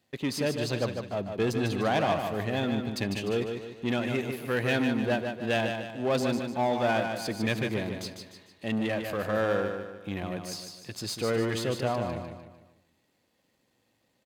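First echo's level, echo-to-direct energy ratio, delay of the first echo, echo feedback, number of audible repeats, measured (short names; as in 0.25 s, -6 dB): -22.0 dB, -5.0 dB, 71 ms, no steady repeat, 6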